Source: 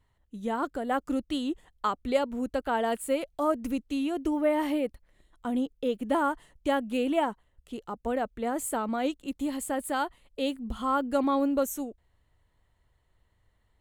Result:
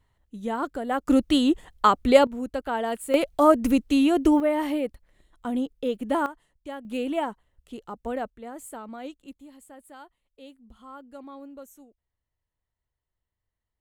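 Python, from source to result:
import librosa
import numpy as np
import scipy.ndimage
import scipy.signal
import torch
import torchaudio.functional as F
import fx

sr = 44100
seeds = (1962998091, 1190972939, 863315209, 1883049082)

y = fx.gain(x, sr, db=fx.steps((0.0, 1.5), (1.08, 10.0), (2.27, 0.0), (3.14, 9.5), (4.4, 1.5), (6.26, -10.5), (6.85, -1.0), (8.3, -9.0), (9.39, -17.0)))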